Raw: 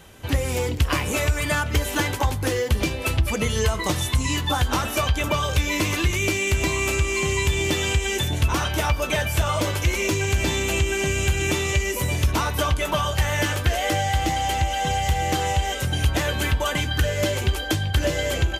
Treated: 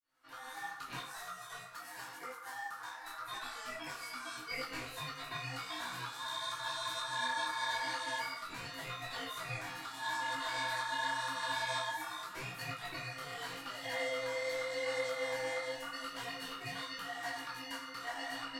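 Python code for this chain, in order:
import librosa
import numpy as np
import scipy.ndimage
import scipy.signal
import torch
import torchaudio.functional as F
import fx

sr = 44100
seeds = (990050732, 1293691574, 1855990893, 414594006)

y = fx.fade_in_head(x, sr, length_s=0.56)
y = fx.peak_eq(y, sr, hz=1600.0, db=-10.5, octaves=2.0, at=(0.99, 3.24))
y = fx.spec_repair(y, sr, seeds[0], start_s=6.24, length_s=0.84, low_hz=380.0, high_hz=1600.0, source='after')
y = fx.resonator_bank(y, sr, root=48, chord='major', decay_s=0.33)
y = y * np.sin(2.0 * np.pi * 1300.0 * np.arange(len(y)) / sr)
y = fx.rev_gated(y, sr, seeds[1], gate_ms=160, shape='flat', drr_db=9.5)
y = fx.detune_double(y, sr, cents=30)
y = y * librosa.db_to_amplitude(1.0)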